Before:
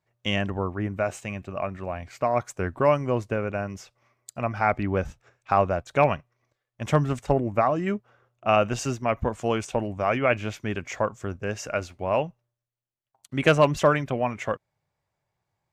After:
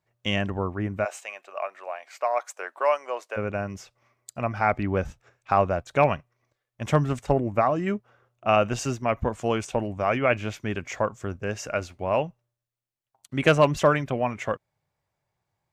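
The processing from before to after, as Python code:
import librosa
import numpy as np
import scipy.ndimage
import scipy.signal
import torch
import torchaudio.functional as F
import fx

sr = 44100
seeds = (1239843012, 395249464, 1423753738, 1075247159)

y = fx.highpass(x, sr, hz=560.0, slope=24, at=(1.04, 3.36), fade=0.02)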